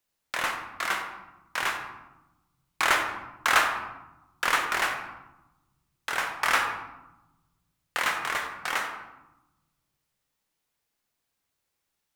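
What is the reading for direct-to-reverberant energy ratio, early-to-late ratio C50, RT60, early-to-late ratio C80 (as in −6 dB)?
4.0 dB, 6.5 dB, 1.0 s, 7.5 dB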